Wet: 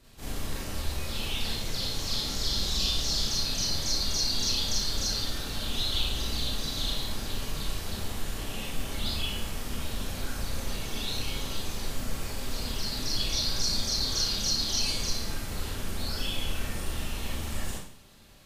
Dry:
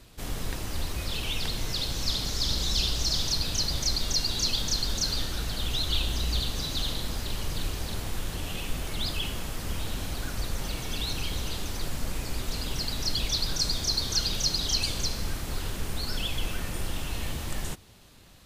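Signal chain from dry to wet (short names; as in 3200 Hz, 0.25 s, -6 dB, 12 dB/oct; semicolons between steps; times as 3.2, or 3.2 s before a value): Schroeder reverb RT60 0.52 s, combs from 28 ms, DRR -6.5 dB; gain -8 dB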